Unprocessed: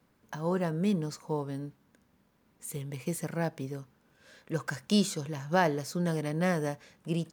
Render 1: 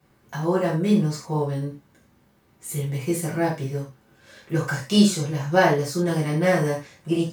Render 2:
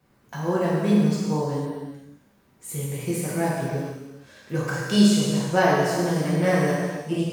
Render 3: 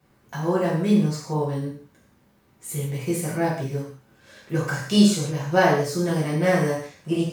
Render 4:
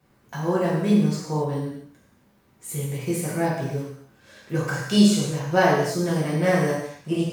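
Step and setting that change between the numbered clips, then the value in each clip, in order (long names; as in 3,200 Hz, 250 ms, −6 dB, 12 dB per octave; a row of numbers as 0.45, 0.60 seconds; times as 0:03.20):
reverb whose tail is shaped and stops, gate: 130, 530, 210, 300 milliseconds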